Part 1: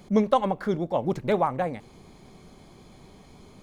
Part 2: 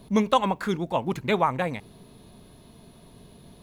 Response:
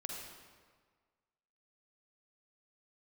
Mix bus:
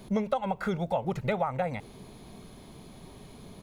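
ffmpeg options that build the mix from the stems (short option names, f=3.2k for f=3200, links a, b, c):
-filter_complex "[0:a]volume=-1.5dB[a];[1:a]acrossover=split=2500[b][c];[c]acompressor=threshold=-48dB:ratio=4:attack=1:release=60[d];[b][d]amix=inputs=2:normalize=0,adelay=0.9,volume=-0.5dB[e];[a][e]amix=inputs=2:normalize=0,acompressor=threshold=-25dB:ratio=6"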